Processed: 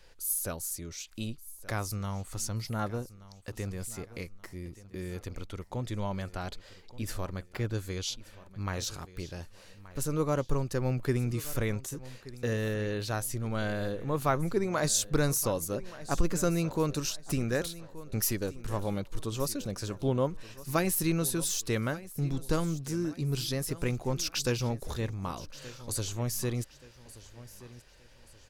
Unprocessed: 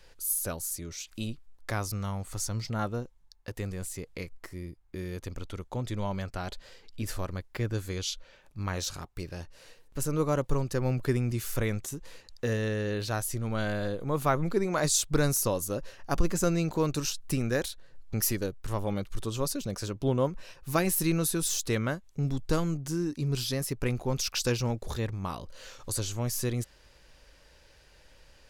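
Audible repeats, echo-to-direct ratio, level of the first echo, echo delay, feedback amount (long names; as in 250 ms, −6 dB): 3, −17.0 dB, −17.5 dB, 1,177 ms, 38%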